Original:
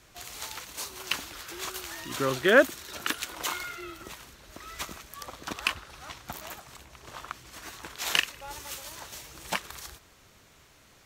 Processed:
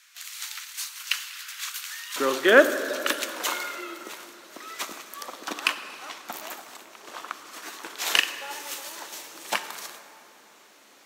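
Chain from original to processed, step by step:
high-pass filter 1,400 Hz 24 dB per octave, from 0:02.16 250 Hz
dense smooth reverb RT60 2.9 s, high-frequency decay 0.55×, DRR 9.5 dB
level +3.5 dB

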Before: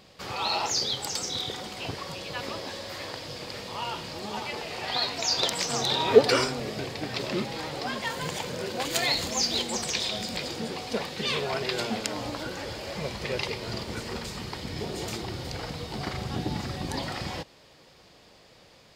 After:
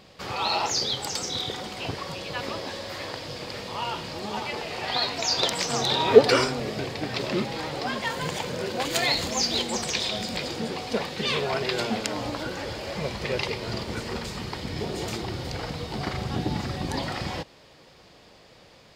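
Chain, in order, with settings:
high-shelf EQ 5,200 Hz −4.5 dB
level +3 dB

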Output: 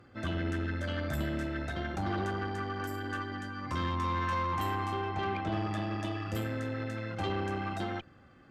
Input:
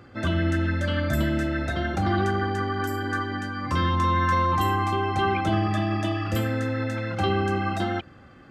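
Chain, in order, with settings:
0:05.09–0:05.52: high-frequency loss of the air 110 metres
tube saturation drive 19 dB, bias 0.55
level −6 dB

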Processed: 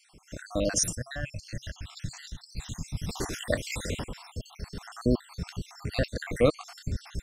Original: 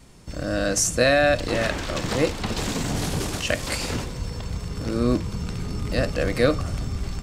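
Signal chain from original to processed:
time-frequency cells dropped at random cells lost 65%
0:00.95–0:03.09: drawn EQ curve 130 Hz 0 dB, 410 Hz −21 dB, 6,700 Hz −4 dB, 9,700 Hz −10 dB
level −2 dB

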